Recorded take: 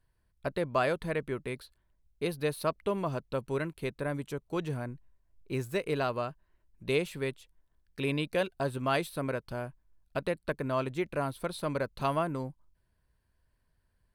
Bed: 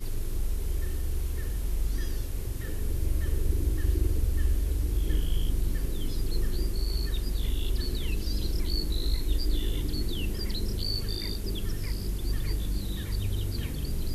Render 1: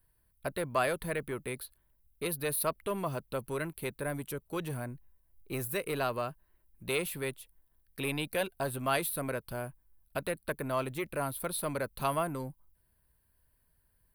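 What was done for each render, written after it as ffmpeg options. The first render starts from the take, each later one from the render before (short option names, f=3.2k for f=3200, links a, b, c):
-filter_complex "[0:a]acrossover=split=660|2000[a][b][c];[a]asoftclip=type=tanh:threshold=-32dB[d];[d][b][c]amix=inputs=3:normalize=0,aexciter=amount=5.1:drive=6.6:freq=9.3k"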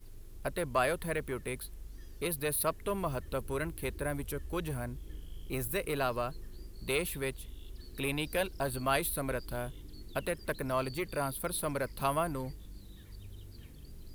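-filter_complex "[1:a]volume=-18.5dB[a];[0:a][a]amix=inputs=2:normalize=0"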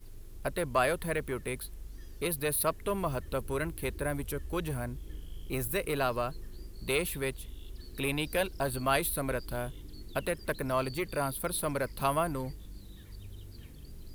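-af "volume=2dB"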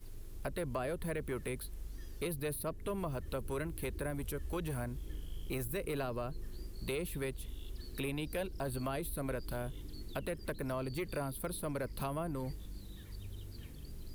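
-filter_complex "[0:a]acrossover=split=520[a][b];[a]alimiter=level_in=8.5dB:limit=-24dB:level=0:latency=1,volume=-8.5dB[c];[b]acompressor=threshold=-42dB:ratio=5[d];[c][d]amix=inputs=2:normalize=0"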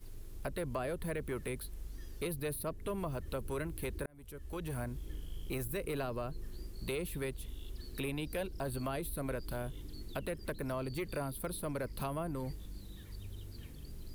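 -filter_complex "[0:a]asplit=2[a][b];[a]atrim=end=4.06,asetpts=PTS-STARTPTS,afade=t=out:st=4.056:d=0.004:c=hsin[c];[b]atrim=start=4.06,asetpts=PTS-STARTPTS,afade=t=in:d=0.74[d];[c][d]concat=n=2:v=0:a=1"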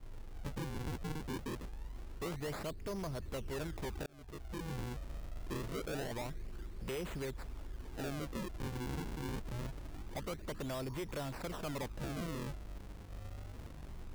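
-af "acrusher=samples=40:mix=1:aa=0.000001:lfo=1:lforange=64:lforate=0.25,asoftclip=type=tanh:threshold=-34dB"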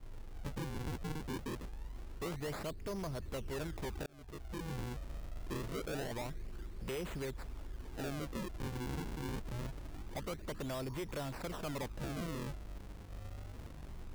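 -af anull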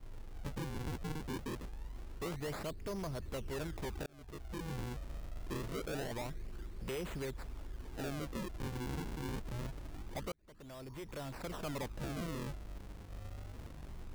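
-filter_complex "[0:a]asplit=2[a][b];[a]atrim=end=10.32,asetpts=PTS-STARTPTS,afade=t=out:st=10.316:d=0.004:c=hsin[c];[b]atrim=start=10.32,asetpts=PTS-STARTPTS,afade=t=in:d=1.29[d];[c][d]concat=n=2:v=0:a=1"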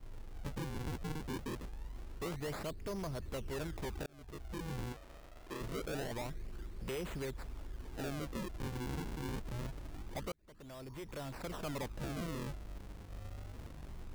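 -filter_complex "[0:a]asettb=1/sr,asplit=3[a][b][c];[a]atrim=end=4.924[d];[b]atrim=start=4.92:end=5.61,asetpts=PTS-STARTPTS,afade=t=in:d=0.004:c=qsin,afade=t=out:st=0.686:d=0.004:c=qsin,bass=f=250:g=-12,treble=f=4k:g=-3[e];[c]atrim=start=5.606[f];[d][e]acrossfade=d=0.004:c1=hsin:c2=qsin[g];[g][f]acrossfade=d=0.004:c1=qsin:c2=hsin"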